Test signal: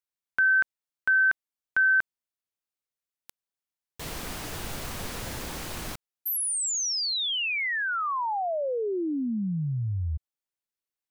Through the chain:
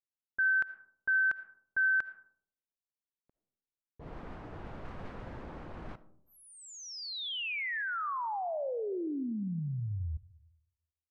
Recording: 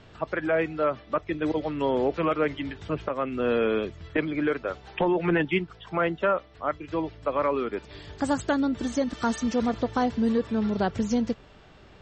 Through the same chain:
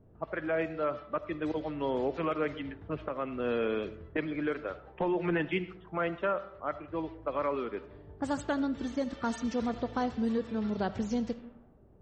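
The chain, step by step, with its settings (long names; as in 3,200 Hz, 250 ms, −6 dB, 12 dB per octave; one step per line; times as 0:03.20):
comb and all-pass reverb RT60 0.79 s, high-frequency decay 0.45×, pre-delay 30 ms, DRR 14 dB
low-pass that shuts in the quiet parts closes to 450 Hz, open at −21 dBFS
level −6.5 dB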